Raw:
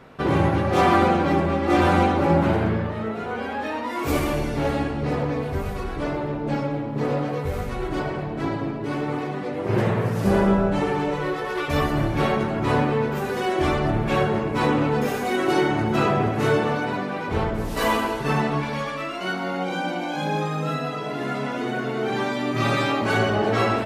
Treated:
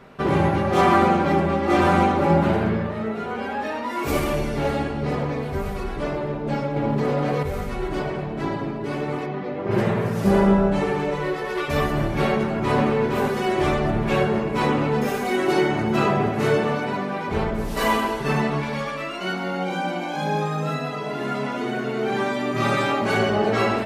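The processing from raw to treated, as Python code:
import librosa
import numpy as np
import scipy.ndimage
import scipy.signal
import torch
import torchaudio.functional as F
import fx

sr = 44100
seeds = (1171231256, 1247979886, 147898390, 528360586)

y = fx.env_flatten(x, sr, amount_pct=100, at=(6.76, 7.43))
y = fx.air_absorb(y, sr, metres=160.0, at=(9.25, 9.7), fade=0.02)
y = fx.echo_throw(y, sr, start_s=12.31, length_s=0.51, ms=460, feedback_pct=50, wet_db=-4.5)
y = y + 0.33 * np.pad(y, (int(5.0 * sr / 1000.0), 0))[:len(y)]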